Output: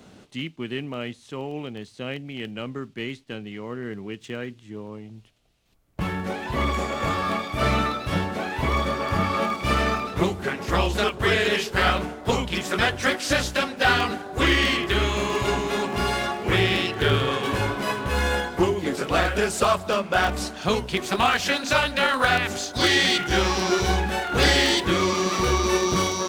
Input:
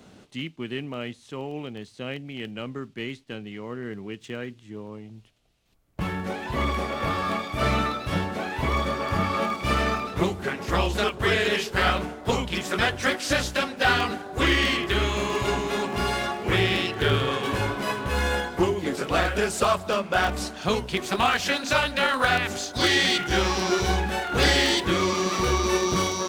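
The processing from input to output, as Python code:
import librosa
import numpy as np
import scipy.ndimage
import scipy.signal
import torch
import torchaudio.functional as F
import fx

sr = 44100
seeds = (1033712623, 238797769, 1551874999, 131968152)

y = fx.peak_eq(x, sr, hz=7100.0, db=11.5, octaves=0.21, at=(6.73, 7.15))
y = y * 10.0 ** (1.5 / 20.0)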